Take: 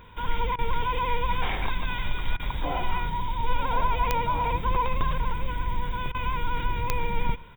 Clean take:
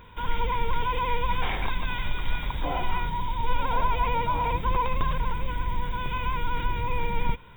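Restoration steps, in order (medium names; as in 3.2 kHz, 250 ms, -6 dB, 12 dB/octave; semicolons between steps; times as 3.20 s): de-click; interpolate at 0.56/2.37/6.12 s, 25 ms; inverse comb 121 ms -22 dB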